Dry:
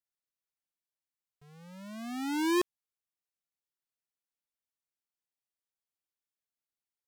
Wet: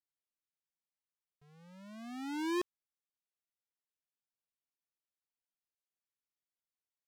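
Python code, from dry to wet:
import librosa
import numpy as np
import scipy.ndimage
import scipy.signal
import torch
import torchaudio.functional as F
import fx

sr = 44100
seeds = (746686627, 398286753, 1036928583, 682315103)

y = fx.high_shelf(x, sr, hz=9100.0, db=-9.0)
y = F.gain(torch.from_numpy(y), -6.5).numpy()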